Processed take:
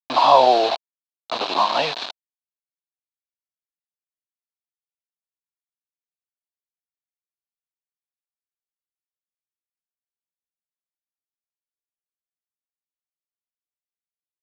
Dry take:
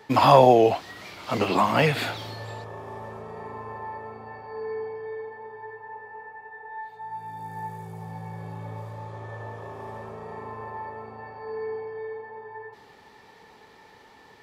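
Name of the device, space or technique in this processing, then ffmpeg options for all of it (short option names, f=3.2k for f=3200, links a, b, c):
hand-held game console: -af "acrusher=bits=3:mix=0:aa=0.000001,highpass=410,equalizer=f=450:t=q:w=4:g=-5,equalizer=f=680:t=q:w=4:g=4,equalizer=f=980:t=q:w=4:g=5,equalizer=f=1.4k:t=q:w=4:g=-3,equalizer=f=2k:t=q:w=4:g=-9,equalizer=f=4k:t=q:w=4:g=10,lowpass=f=4.5k:w=0.5412,lowpass=f=4.5k:w=1.3066"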